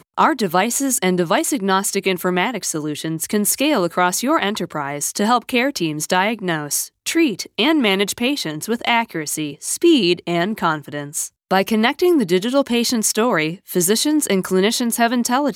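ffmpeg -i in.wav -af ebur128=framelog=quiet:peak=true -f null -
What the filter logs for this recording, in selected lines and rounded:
Integrated loudness:
  I:         -18.4 LUFS
  Threshold: -28.4 LUFS
Loudness range:
  LRA:         2.0 LU
  Threshold: -38.6 LUFS
  LRA low:   -19.3 LUFS
  LRA high:  -17.4 LUFS
True peak:
  Peak:       -3.0 dBFS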